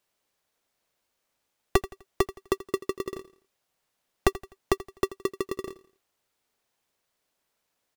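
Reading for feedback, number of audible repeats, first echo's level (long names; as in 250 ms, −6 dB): 38%, 3, −17.0 dB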